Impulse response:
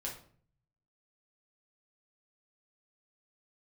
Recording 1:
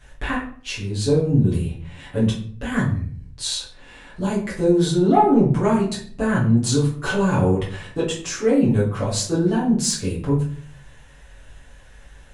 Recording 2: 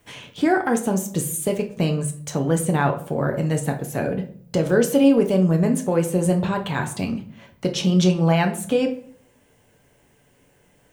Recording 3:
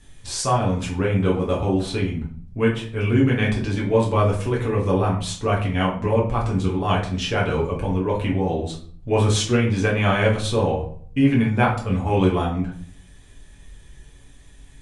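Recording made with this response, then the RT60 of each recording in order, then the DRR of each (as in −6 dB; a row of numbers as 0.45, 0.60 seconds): 3; 0.50, 0.50, 0.50 seconds; −8.0, 4.0, −4.0 decibels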